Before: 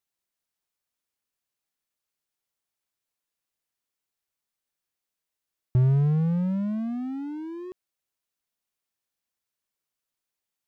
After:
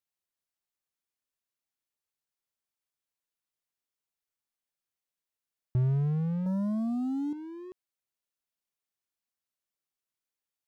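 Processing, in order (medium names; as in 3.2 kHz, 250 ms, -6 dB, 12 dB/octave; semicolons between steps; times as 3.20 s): 6.46–7.33 s: waveshaping leveller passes 3; trim -6 dB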